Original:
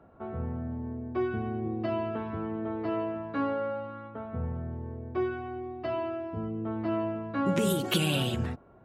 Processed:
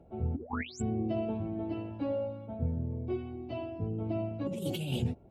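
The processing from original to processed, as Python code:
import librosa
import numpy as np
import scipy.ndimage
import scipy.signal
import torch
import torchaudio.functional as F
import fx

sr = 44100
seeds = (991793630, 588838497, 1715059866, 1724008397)

y = fx.spec_paint(x, sr, seeds[0], shape='rise', start_s=0.6, length_s=0.73, low_hz=260.0, high_hz=7900.0, level_db=-20.0)
y = fx.stretch_vocoder_free(y, sr, factor=0.6)
y = fx.band_shelf(y, sr, hz=1400.0, db=-13.5, octaves=1.1)
y = fx.over_compress(y, sr, threshold_db=-32.0, ratio=-0.5)
y = fx.low_shelf(y, sr, hz=260.0, db=7.5)
y = y * librosa.db_to_amplitude(-3.0)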